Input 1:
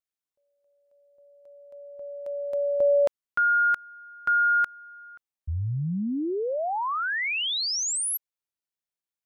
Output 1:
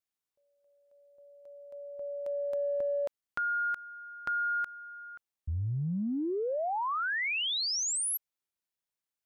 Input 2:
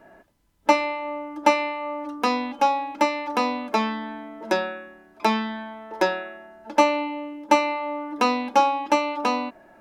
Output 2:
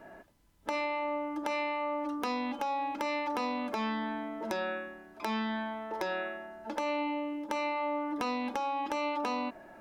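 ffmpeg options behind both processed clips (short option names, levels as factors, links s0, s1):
-af "acompressor=threshold=0.0355:ratio=20:attack=3.8:release=38:knee=6:detection=rms"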